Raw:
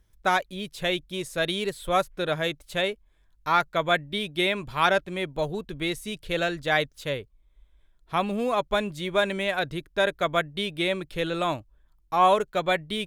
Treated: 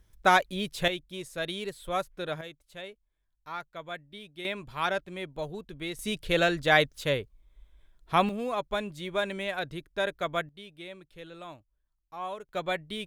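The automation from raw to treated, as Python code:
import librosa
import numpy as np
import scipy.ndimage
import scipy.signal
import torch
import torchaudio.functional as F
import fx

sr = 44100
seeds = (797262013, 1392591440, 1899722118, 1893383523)

y = fx.gain(x, sr, db=fx.steps((0.0, 2.0), (0.88, -7.0), (2.41, -16.0), (4.45, -7.5), (5.99, 2.0), (8.29, -6.0), (10.49, -17.5), (12.49, -6.5)))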